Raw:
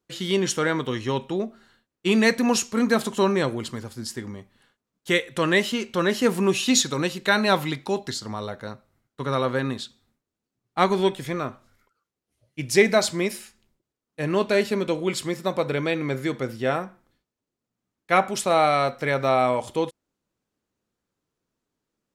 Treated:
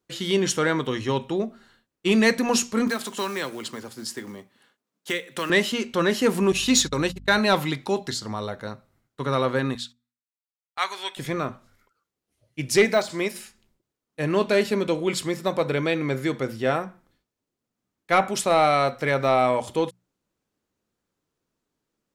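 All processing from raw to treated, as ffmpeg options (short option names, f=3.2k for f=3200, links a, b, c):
-filter_complex "[0:a]asettb=1/sr,asplit=3[a][b][c];[a]atrim=end=2.874[d];[b]atrim=start=2.87:end=5.5,asetpts=PTS-STARTPTS,afade=t=in:d=0.004:c=qsin,afade=t=out:st=2.626:d=0.004:c=qsin,acrusher=bits=6:mode=log:mix=0:aa=0.000001,highpass=200,acrossover=split=430|1100[e][f][g];[e]acompressor=threshold=-35dB:ratio=4[h];[f]acompressor=threshold=-38dB:ratio=4[i];[g]acompressor=threshold=-28dB:ratio=4[j];[h][i][j]amix=inputs=3:normalize=0[k];[c]atrim=start=5.496[l];[d][k]acrossfade=d=0.004:c1=hsin:c2=qsin[m];[m][l]acrossfade=d=0.004:c1=qsin:c2=hsin,asettb=1/sr,asplit=3[n][o][p];[n]atrim=end=6.524[q];[o]atrim=start=6.52:end=7.39,asetpts=PTS-STARTPTS,afade=t=in:d=0.004:c=qsin,afade=t=out:st=0.866:d=0.004:c=qsin,agate=range=-33dB:threshold=-31dB:ratio=16:release=100:detection=peak,aeval=exprs='val(0)+0.00708*(sin(2*PI*50*n/s)+sin(2*PI*2*50*n/s)/2+sin(2*PI*3*50*n/s)/3+sin(2*PI*4*50*n/s)/4+sin(2*PI*5*50*n/s)/5)':c=same[r];[p]atrim=start=7.386[s];[q][r]acrossfade=d=0.004:c1=hsin:c2=qsin[t];[t][s]acrossfade=d=0.004:c1=qsin:c2=hsin,asettb=1/sr,asplit=3[u][v][w];[u]atrim=end=9.754[x];[v]atrim=start=9.75:end=11.17,asetpts=PTS-STARTPTS,afade=t=in:d=0.004:c=qsin,afade=t=out:st=1.416:d=0.004:c=qsin,highpass=1.4k,agate=range=-19dB:threshold=-54dB:ratio=16:release=100:detection=peak[y];[w]atrim=start=11.166[z];[x][y]acrossfade=d=0.004:c1=hsin:c2=qsin[aa];[aa][z]acrossfade=d=0.004:c1=qsin:c2=hsin,asettb=1/sr,asplit=3[ab][ac][ad];[ab]atrim=end=12.854[ae];[ac]atrim=start=12.85:end=13.36,asetpts=PTS-STARTPTS,afade=t=in:d=0.004:c=qsin,afade=t=out:st=0.506:d=0.004:c=qsin,deesser=0.75,lowshelf=f=200:g=-10[af];[ad]atrim=start=13.356[ag];[ae][af]acrossfade=d=0.004:c1=hsin:c2=qsin[ah];[ah][ag]acrossfade=d=0.004:c1=qsin:c2=hsin,acontrast=89,bandreject=f=60:t=h:w=6,bandreject=f=120:t=h:w=6,bandreject=f=180:t=h:w=6,bandreject=f=240:t=h:w=6,volume=-6dB"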